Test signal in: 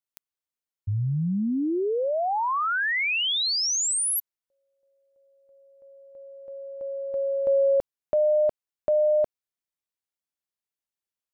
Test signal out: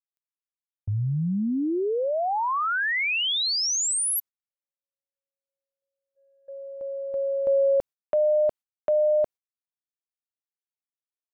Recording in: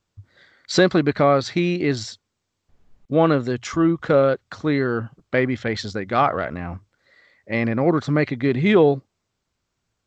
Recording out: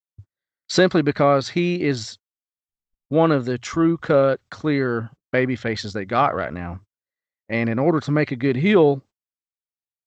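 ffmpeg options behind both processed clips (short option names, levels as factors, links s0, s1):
-af "agate=range=0.0126:threshold=0.00794:ratio=16:release=211:detection=peak"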